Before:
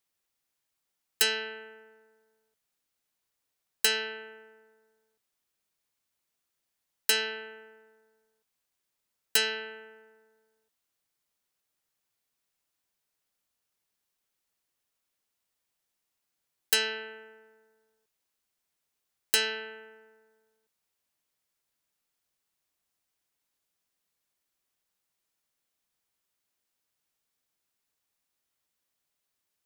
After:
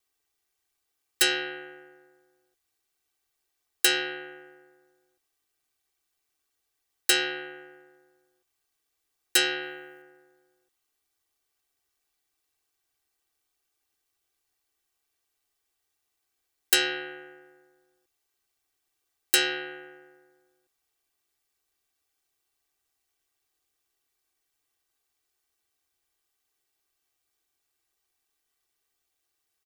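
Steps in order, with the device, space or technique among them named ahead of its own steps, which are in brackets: ring-modulated robot voice (ring modulator 73 Hz; comb 2.6 ms, depth 98%); 9.62–10.02 high shelf 8200 Hz +9 dB; gain +3 dB

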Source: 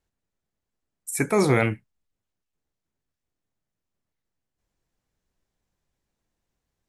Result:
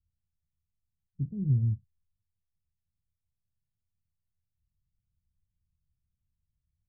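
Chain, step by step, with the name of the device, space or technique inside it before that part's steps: the neighbour's flat through the wall (LPF 160 Hz 24 dB/oct; bell 83 Hz +8 dB 0.49 oct)

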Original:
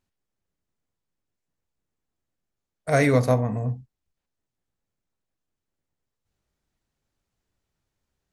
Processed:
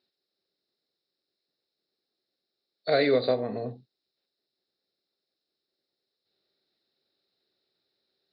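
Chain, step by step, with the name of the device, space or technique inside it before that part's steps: hearing aid with frequency lowering (nonlinear frequency compression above 3500 Hz 4:1; compressor 3:1, threshold -22 dBFS, peak gain reduction 6.5 dB; speaker cabinet 270–5400 Hz, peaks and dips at 380 Hz +9 dB, 550 Hz +4 dB, 1000 Hz -9 dB, 3900 Hz +8 dB)

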